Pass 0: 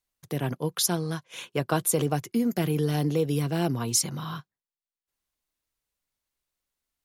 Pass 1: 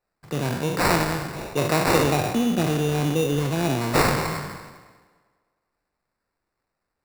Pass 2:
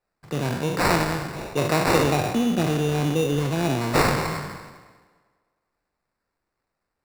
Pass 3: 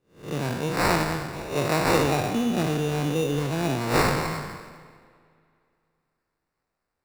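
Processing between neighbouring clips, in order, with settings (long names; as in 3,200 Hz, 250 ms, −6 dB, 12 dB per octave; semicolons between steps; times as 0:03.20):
peak hold with a decay on every bin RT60 1.25 s; sample-rate reduction 3,200 Hz, jitter 0%; tape delay 101 ms, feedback 69%, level −17 dB, low-pass 5,500 Hz; level +1.5 dB
high-shelf EQ 10,000 Hz −5 dB
peak hold with a rise ahead of every peak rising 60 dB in 0.39 s; on a send at −18 dB: convolution reverb RT60 2.7 s, pre-delay 37 ms; on the sum: level −3 dB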